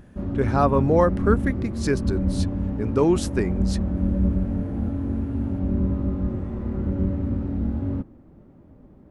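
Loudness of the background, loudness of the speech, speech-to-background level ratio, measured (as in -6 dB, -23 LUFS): -26.0 LUFS, -24.0 LUFS, 2.0 dB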